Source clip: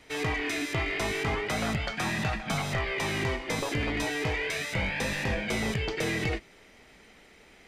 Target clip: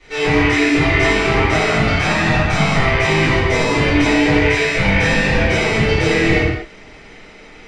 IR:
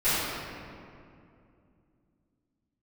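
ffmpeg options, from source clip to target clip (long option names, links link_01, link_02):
-filter_complex "[0:a]lowpass=frequency=7800:width=0.5412,lowpass=frequency=7800:width=1.3066[link_01];[1:a]atrim=start_sample=2205,afade=type=out:start_time=0.33:duration=0.01,atrim=end_sample=14994[link_02];[link_01][link_02]afir=irnorm=-1:irlink=0"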